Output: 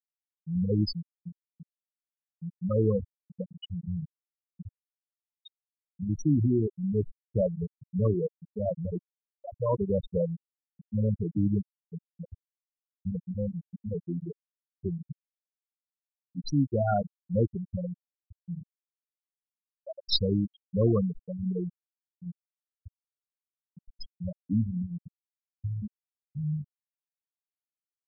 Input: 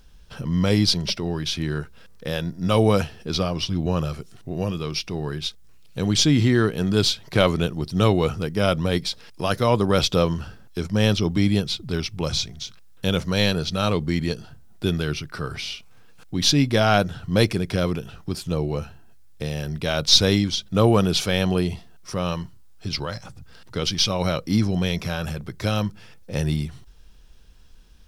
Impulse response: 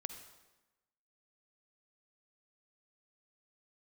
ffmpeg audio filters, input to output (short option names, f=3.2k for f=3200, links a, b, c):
-af "afftfilt=real='re*gte(hypot(re,im),0.562)':imag='im*gte(hypot(re,im),0.562)':win_size=1024:overlap=0.75,asuperstop=centerf=3400:order=4:qfactor=4.2,volume=-5.5dB"